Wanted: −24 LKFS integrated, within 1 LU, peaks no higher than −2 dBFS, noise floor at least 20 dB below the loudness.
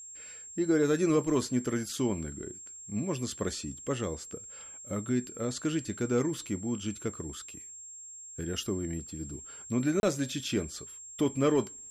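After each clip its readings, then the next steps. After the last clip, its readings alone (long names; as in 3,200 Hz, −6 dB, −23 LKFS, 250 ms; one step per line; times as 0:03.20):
number of dropouts 1; longest dropout 31 ms; interfering tone 7,500 Hz; level of the tone −44 dBFS; integrated loudness −32.0 LKFS; sample peak −17.0 dBFS; target loudness −24.0 LKFS
→ repair the gap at 0:10.00, 31 ms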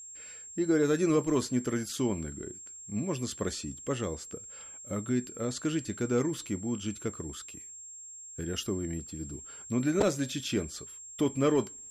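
number of dropouts 0; interfering tone 7,500 Hz; level of the tone −44 dBFS
→ notch filter 7,500 Hz, Q 30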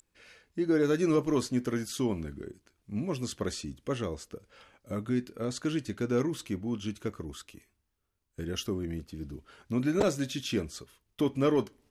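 interfering tone none found; integrated loudness −31.5 LKFS; sample peak −12.5 dBFS; target loudness −24.0 LKFS
→ level +7.5 dB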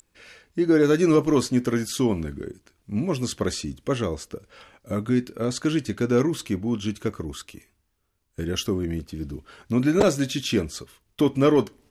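integrated loudness −24.0 LKFS; sample peak −5.0 dBFS; background noise floor −71 dBFS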